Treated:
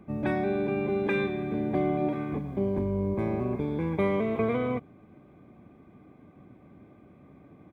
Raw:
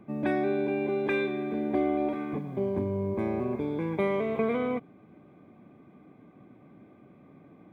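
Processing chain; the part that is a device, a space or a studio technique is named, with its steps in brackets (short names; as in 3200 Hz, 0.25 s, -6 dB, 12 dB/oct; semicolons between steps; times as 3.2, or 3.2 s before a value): octave pedal (harmoniser -12 st -7 dB)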